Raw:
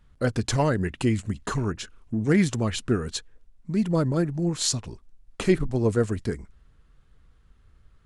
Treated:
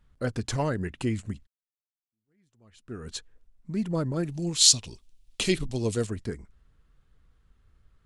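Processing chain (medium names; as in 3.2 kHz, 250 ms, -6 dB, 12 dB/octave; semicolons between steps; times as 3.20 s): 1.47–3.10 s: fade in exponential; 4.23–6.07 s: resonant high shelf 2.2 kHz +11.5 dB, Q 1.5; trim -5 dB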